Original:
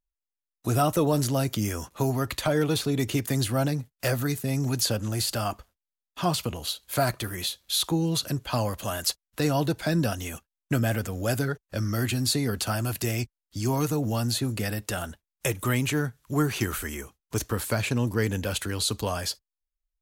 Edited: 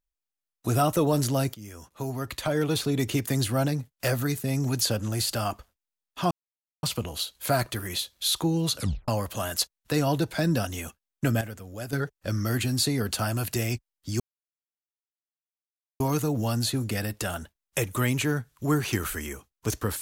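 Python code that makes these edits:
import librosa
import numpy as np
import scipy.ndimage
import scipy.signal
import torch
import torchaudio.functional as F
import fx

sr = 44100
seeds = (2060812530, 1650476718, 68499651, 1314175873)

y = fx.edit(x, sr, fx.fade_in_from(start_s=1.54, length_s=1.31, floor_db=-19.0),
    fx.insert_silence(at_s=6.31, length_s=0.52),
    fx.tape_stop(start_s=8.25, length_s=0.31),
    fx.clip_gain(start_s=10.89, length_s=0.52, db=-10.0),
    fx.insert_silence(at_s=13.68, length_s=1.8), tone=tone)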